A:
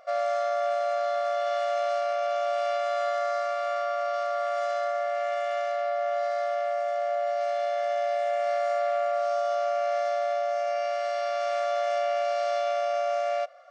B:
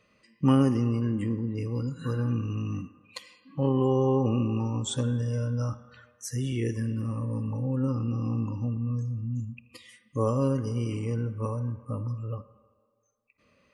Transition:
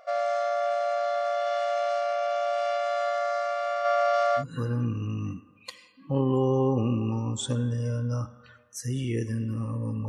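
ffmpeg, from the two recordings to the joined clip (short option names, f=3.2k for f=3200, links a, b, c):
-filter_complex "[0:a]asplit=3[a][b][c];[a]afade=t=out:st=3.84:d=0.02[d];[b]acontrast=32,afade=t=in:st=3.84:d=0.02,afade=t=out:st=4.44:d=0.02[e];[c]afade=t=in:st=4.44:d=0.02[f];[d][e][f]amix=inputs=3:normalize=0,apad=whole_dur=10.08,atrim=end=10.08,atrim=end=4.44,asetpts=PTS-STARTPTS[g];[1:a]atrim=start=1.84:end=7.56,asetpts=PTS-STARTPTS[h];[g][h]acrossfade=d=0.08:c1=tri:c2=tri"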